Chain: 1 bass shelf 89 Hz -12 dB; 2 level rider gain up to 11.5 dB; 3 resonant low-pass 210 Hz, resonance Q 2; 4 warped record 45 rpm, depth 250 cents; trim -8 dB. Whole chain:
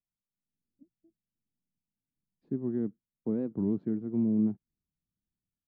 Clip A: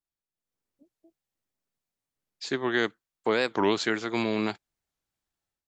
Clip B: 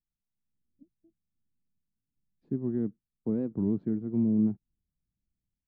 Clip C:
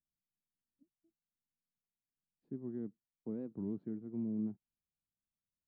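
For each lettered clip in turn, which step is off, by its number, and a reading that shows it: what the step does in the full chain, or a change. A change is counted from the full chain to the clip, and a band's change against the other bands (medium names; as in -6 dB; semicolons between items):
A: 3, crest factor change +4.0 dB; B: 1, loudness change +1.5 LU; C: 2, loudness change -10.5 LU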